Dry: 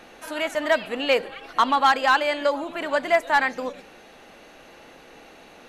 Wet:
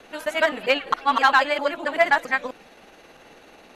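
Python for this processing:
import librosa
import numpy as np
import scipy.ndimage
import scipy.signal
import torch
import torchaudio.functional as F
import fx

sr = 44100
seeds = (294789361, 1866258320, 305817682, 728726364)

y = fx.local_reverse(x, sr, ms=200.0)
y = fx.stretch_grains(y, sr, factor=0.66, grain_ms=109.0)
y = fx.dynamic_eq(y, sr, hz=1800.0, q=0.73, threshold_db=-30.0, ratio=4.0, max_db=4)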